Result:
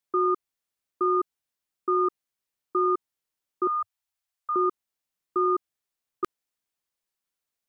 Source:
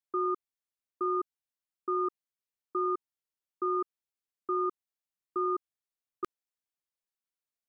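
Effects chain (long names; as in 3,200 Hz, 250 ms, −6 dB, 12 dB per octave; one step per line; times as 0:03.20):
0:03.67–0:04.56: elliptic band-stop filter 100–680 Hz, stop band 40 dB
level +6.5 dB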